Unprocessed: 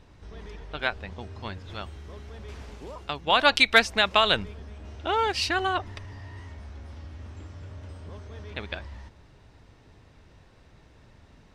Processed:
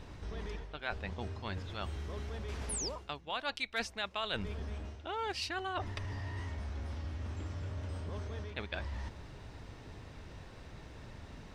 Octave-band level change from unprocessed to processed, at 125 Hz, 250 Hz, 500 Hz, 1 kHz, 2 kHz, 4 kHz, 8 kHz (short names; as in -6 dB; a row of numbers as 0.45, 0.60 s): -0.5, -7.5, -12.0, -13.5, -15.0, -14.5, -1.5 dB